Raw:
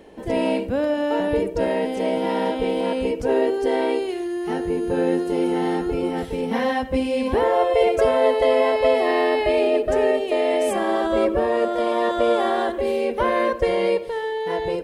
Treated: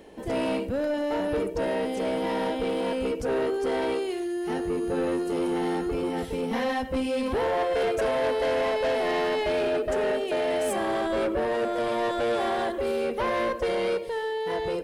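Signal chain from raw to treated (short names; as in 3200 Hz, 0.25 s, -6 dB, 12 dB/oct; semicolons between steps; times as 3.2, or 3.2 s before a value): high shelf 4300 Hz +4.5 dB; soft clip -19 dBFS, distortion -12 dB; gain -2.5 dB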